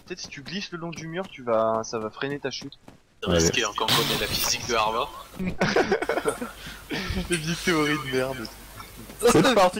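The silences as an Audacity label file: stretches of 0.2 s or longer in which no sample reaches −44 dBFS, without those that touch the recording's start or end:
2.960000	3.220000	silence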